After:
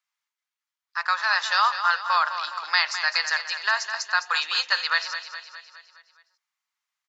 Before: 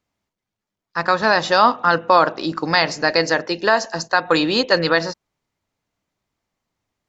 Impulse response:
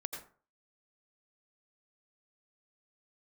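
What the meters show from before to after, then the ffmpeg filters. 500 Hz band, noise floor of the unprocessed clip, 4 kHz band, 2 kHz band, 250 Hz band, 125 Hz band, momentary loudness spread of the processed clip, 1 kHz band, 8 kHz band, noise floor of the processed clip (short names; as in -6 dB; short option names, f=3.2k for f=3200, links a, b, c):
-24.0 dB, -85 dBFS, -2.5 dB, -2.5 dB, under -40 dB, under -40 dB, 10 LU, -6.5 dB, n/a, under -85 dBFS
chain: -filter_complex "[0:a]highpass=f=1.1k:w=0.5412,highpass=f=1.1k:w=1.3066,asplit=2[a][b];[b]aecho=0:1:207|414|621|828|1035|1242:0.316|0.174|0.0957|0.0526|0.0289|0.0159[c];[a][c]amix=inputs=2:normalize=0,volume=-3dB"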